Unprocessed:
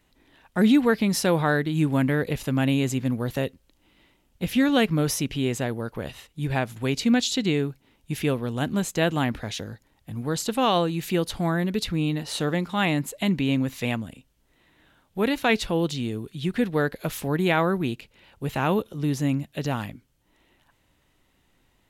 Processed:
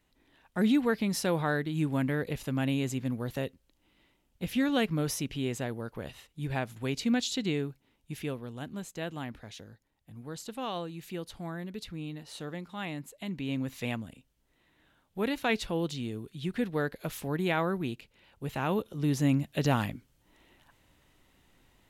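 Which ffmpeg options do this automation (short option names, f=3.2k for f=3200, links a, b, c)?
-af "volume=8dB,afade=t=out:st=7.53:d=1.14:silence=0.446684,afade=t=in:st=13.27:d=0.48:silence=0.446684,afade=t=in:st=18.68:d=1.02:silence=0.398107"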